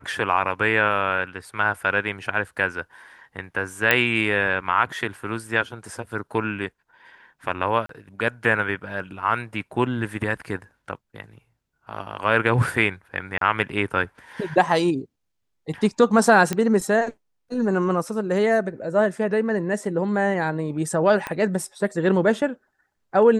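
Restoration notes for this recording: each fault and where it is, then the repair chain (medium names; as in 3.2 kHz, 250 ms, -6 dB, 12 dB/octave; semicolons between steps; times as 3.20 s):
3.91 s: pop -3 dBFS
7.86–7.89 s: dropout 33 ms
13.38–13.41 s: dropout 33 ms
16.53 s: pop -10 dBFS
21.27 s: pop -14 dBFS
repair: de-click; interpolate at 7.86 s, 33 ms; interpolate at 13.38 s, 33 ms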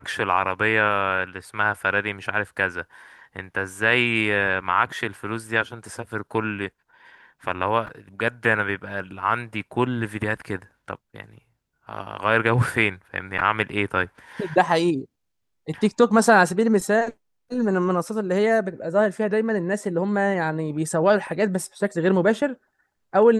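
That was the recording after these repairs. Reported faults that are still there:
21.27 s: pop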